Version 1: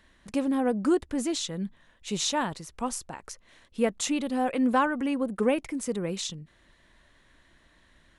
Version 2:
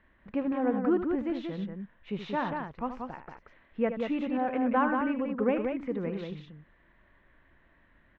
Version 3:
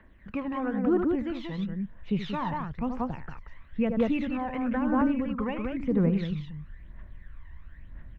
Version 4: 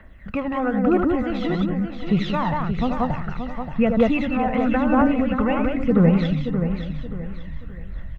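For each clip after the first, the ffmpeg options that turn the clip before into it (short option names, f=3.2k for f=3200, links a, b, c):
-filter_complex "[0:a]lowpass=f=2.4k:w=0.5412,lowpass=f=2.4k:w=1.3066,asplit=2[a][b];[b]aecho=0:1:75.8|183.7:0.316|0.562[c];[a][c]amix=inputs=2:normalize=0,volume=-3dB"
-filter_complex "[0:a]acrossover=split=100|670[a][b][c];[a]acompressor=threshold=-59dB:ratio=4[d];[b]acompressor=threshold=-29dB:ratio=4[e];[c]acompressor=threshold=-36dB:ratio=4[f];[d][e][f]amix=inputs=3:normalize=0,aphaser=in_gain=1:out_gain=1:delay=1.1:decay=0.61:speed=1:type=triangular,asubboost=boost=4.5:cutoff=150,volume=2dB"
-af "aecho=1:1:1.5:0.36,aecho=1:1:577|1154|1731|2308:0.398|0.135|0.046|0.0156,volume=8.5dB"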